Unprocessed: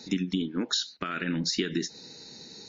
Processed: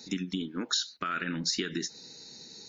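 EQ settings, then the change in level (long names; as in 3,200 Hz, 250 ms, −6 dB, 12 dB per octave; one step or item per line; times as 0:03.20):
high-shelf EQ 6,100 Hz +11 dB
dynamic equaliser 1,300 Hz, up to +7 dB, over −49 dBFS, Q 1.7
−5.0 dB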